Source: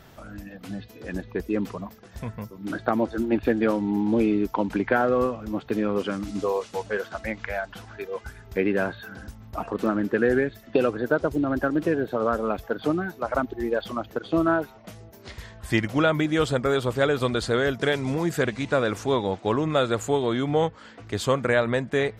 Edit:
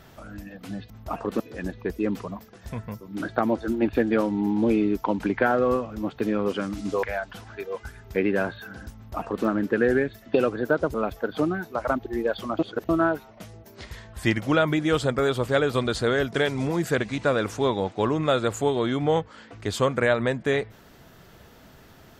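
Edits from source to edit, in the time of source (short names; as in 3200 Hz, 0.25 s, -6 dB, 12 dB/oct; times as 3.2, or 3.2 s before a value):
6.53–7.44 cut
9.37–9.87 copy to 0.9
11.35–12.41 cut
14.06–14.36 reverse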